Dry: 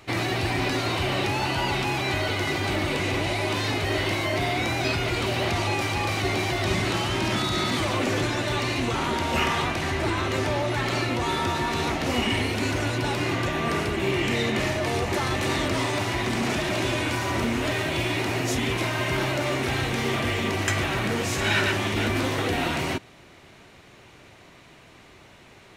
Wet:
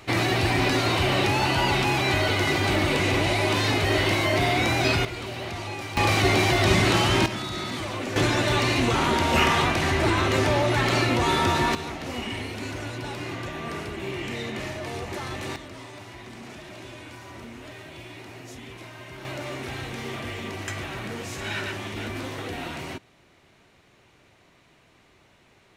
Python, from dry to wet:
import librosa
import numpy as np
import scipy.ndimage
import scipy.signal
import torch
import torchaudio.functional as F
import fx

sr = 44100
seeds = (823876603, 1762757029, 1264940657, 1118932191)

y = fx.gain(x, sr, db=fx.steps((0.0, 3.0), (5.05, -8.0), (5.97, 5.0), (7.26, -6.0), (8.16, 3.5), (11.75, -7.5), (15.56, -16.0), (19.25, -8.0)))